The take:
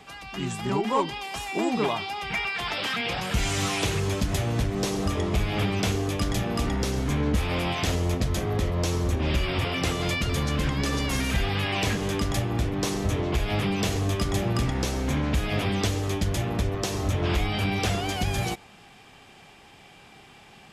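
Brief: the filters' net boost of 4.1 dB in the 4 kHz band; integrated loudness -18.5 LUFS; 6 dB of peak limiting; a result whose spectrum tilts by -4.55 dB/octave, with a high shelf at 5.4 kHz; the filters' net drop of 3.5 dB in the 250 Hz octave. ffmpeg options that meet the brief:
-af "equalizer=f=250:t=o:g=-5,equalizer=f=4000:t=o:g=8.5,highshelf=f=5400:g=-7.5,volume=2.99,alimiter=limit=0.355:level=0:latency=1"

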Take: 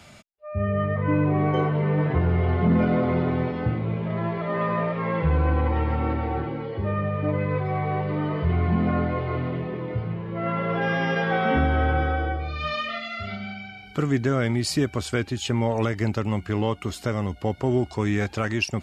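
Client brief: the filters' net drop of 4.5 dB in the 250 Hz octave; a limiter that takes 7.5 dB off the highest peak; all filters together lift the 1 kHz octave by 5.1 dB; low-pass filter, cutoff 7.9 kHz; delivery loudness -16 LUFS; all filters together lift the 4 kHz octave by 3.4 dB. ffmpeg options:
-af "lowpass=7900,equalizer=f=250:t=o:g=-7,equalizer=f=1000:t=o:g=7,equalizer=f=4000:t=o:g=4.5,volume=3.35,alimiter=limit=0.531:level=0:latency=1"

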